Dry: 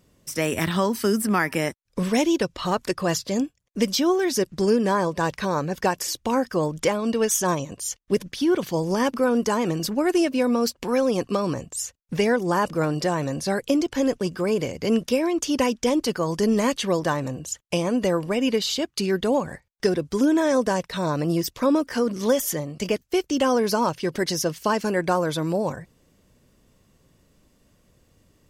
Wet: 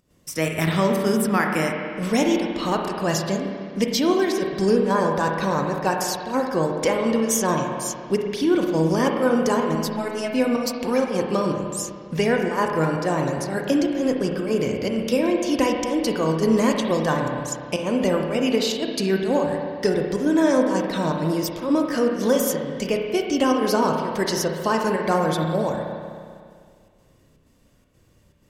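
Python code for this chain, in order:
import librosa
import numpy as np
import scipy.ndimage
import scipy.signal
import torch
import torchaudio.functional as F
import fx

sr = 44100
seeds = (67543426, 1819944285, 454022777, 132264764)

y = fx.robotise(x, sr, hz=215.0, at=(9.75, 10.32))
y = fx.volume_shaper(y, sr, bpm=125, per_beat=1, depth_db=-11, release_ms=101.0, shape='slow start')
y = fx.rev_spring(y, sr, rt60_s=2.1, pass_ms=(31, 50), chirp_ms=40, drr_db=1.5)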